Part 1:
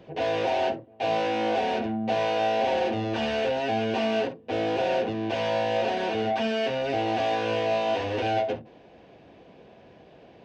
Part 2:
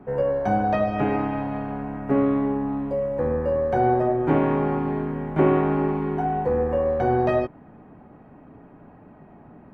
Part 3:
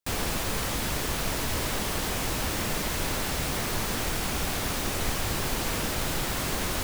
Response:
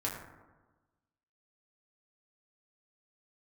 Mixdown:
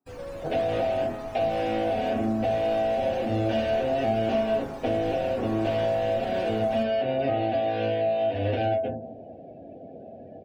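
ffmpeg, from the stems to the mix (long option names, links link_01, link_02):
-filter_complex "[0:a]equalizer=frequency=250:width_type=o:width=0.33:gain=8,equalizer=frequency=630:width_type=o:width=0.33:gain=10,equalizer=frequency=1000:width_type=o:width=0.33:gain=-12,acrossover=split=170[link_01][link_02];[link_02]acompressor=threshold=-29dB:ratio=10[link_03];[link_01][link_03]amix=inputs=2:normalize=0,adelay=350,volume=2dB,asplit=2[link_04][link_05];[link_05]volume=-10dB[link_06];[1:a]highpass=frequency=490:poles=1,volume=-16dB,asplit=2[link_07][link_08];[link_08]volume=-11.5dB[link_09];[2:a]volume=-17.5dB,asplit=2[link_10][link_11];[link_11]volume=-5dB[link_12];[3:a]atrim=start_sample=2205[link_13];[link_06][link_09][link_12]amix=inputs=3:normalize=0[link_14];[link_14][link_13]afir=irnorm=-1:irlink=0[link_15];[link_04][link_07][link_10][link_15]amix=inputs=4:normalize=0,afftdn=noise_reduction=21:noise_floor=-48"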